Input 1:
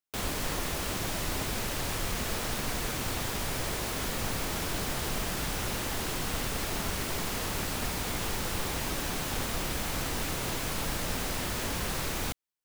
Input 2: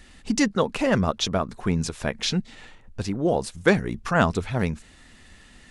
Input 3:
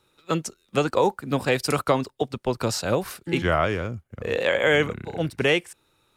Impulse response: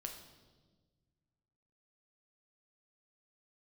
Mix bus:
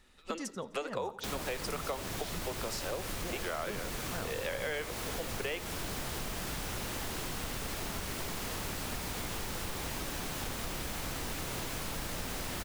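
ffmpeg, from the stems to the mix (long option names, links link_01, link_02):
-filter_complex "[0:a]adelay=1100,volume=0.5dB[link_01];[1:a]volume=-17dB,asplit=2[link_02][link_03];[link_03]volume=-7.5dB[link_04];[2:a]highpass=frequency=370:width=0.5412,highpass=frequency=370:width=1.3066,volume=-4dB,asplit=2[link_05][link_06];[link_06]volume=-19dB[link_07];[3:a]atrim=start_sample=2205[link_08];[link_04][link_08]afir=irnorm=-1:irlink=0[link_09];[link_07]aecho=0:1:85|170|255|340|425:1|0.38|0.144|0.0549|0.0209[link_10];[link_01][link_02][link_05][link_09][link_10]amix=inputs=5:normalize=0,acompressor=threshold=-35dB:ratio=4"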